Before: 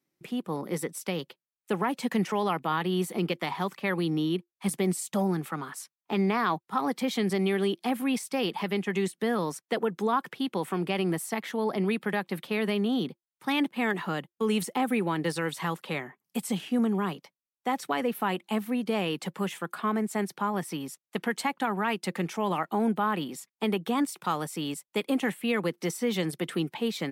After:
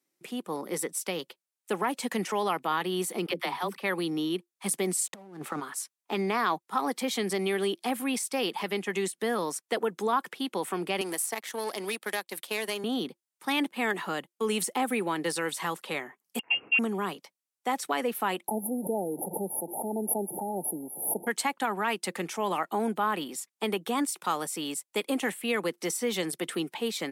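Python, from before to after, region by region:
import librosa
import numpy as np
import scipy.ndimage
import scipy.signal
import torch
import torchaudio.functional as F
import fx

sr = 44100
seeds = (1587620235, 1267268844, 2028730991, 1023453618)

y = fx.chain(x, sr, fx.peak_eq(hz=7000.0, db=-14.5, octaves=0.23),
    fx.dispersion(late='lows', ms=48.0, hz=380.0), at=(3.26, 3.82))
y = fx.chain(y, sr, fx.high_shelf(hz=2200.0, db=-9.5),
    fx.over_compress(threshold_db=-34.0, ratio=-0.5),
    fx.backlash(play_db=-49.5), at=(5.05, 5.6))
y = fx.chain(y, sr, fx.bass_treble(bass_db=-10, treble_db=7),
    fx.power_curve(exponent=1.4),
    fx.band_squash(depth_pct=70), at=(11.01, 12.84))
y = fx.chain(y, sr, fx.freq_invert(carrier_hz=3000),
    fx.transient(attack_db=2, sustain_db=-5), at=(16.39, 16.79))
y = fx.chain(y, sr, fx.delta_mod(bps=64000, step_db=-37.5),
    fx.brickwall_bandstop(low_hz=930.0, high_hz=9900.0),
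    fx.pre_swell(db_per_s=77.0), at=(18.48, 21.27))
y = scipy.signal.sosfilt(scipy.signal.butter(2, 270.0, 'highpass', fs=sr, output='sos'), y)
y = fx.peak_eq(y, sr, hz=8900.0, db=7.0, octaves=1.3)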